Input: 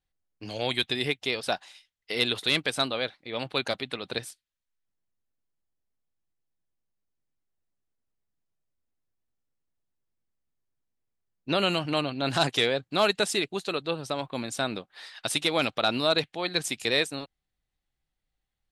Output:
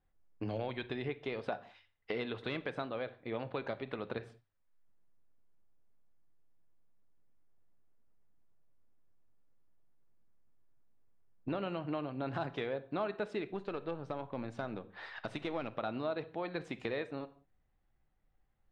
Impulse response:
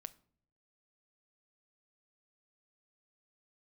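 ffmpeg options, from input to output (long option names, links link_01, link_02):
-filter_complex "[0:a]lowpass=1500,bandreject=frequency=49.92:width_type=h:width=4,bandreject=frequency=99.84:width_type=h:width=4,acompressor=threshold=-45dB:ratio=4,asettb=1/sr,asplit=3[link_01][link_02][link_03];[link_01]atrim=end=13.494[link_04];[link_02]atrim=start=13.49:end=15.67,asetpts=PTS-STARTPTS,afade=type=in:duration=0.004:curve=qsin,afade=type=out:start_time=2.176:duration=0.004:curve=qsin,aeval=exprs='(tanh(50.1*val(0)+0.35)-tanh(0.35))/50.1':channel_layout=same[link_05];[link_03]atrim=start=15.666[link_06];[link_04][link_05]acrossfade=duration=0.004:curve1=hsin:curve2=qsin[link_07];[link_07][link_06]acrossfade=duration=0.004:curve1=qsin:curve2=hsin[link_08];[1:a]atrim=start_sample=2205,atrim=end_sample=6174,asetrate=30870,aresample=44100[link_09];[link_08][link_09]afir=irnorm=-1:irlink=0,volume=11dB"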